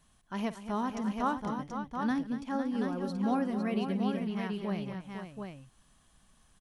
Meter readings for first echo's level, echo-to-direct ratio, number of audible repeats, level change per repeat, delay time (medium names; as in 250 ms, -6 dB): -16.5 dB, -3.0 dB, 4, no regular repeats, 51 ms